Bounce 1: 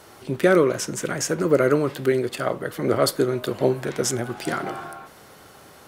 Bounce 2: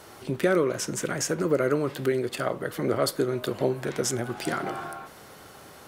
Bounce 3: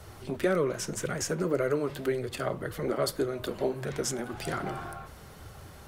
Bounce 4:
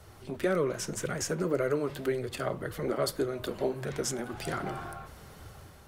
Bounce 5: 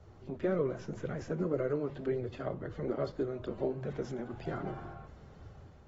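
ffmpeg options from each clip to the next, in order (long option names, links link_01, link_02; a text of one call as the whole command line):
ffmpeg -i in.wav -af "acompressor=threshold=-29dB:ratio=1.5" out.wav
ffmpeg -i in.wav -filter_complex "[0:a]acrossover=split=110[link_01][link_02];[link_01]aeval=exprs='0.0168*sin(PI/2*5.62*val(0)/0.0168)':channel_layout=same[link_03];[link_03][link_02]amix=inputs=2:normalize=0,flanger=delay=1.5:depth=3.7:regen=-49:speed=1.8:shape=sinusoidal" out.wav
ffmpeg -i in.wav -af "dynaudnorm=framelen=110:gausssize=7:maxgain=4dB,volume=-5dB" out.wav
ffmpeg -i in.wav -filter_complex "[0:a]acrossover=split=4900[link_01][link_02];[link_02]acompressor=threshold=-49dB:ratio=4:attack=1:release=60[link_03];[link_01][link_03]amix=inputs=2:normalize=0,tiltshelf=frequency=970:gain=6.5,volume=-8dB" -ar 44100 -c:a aac -b:a 24k out.aac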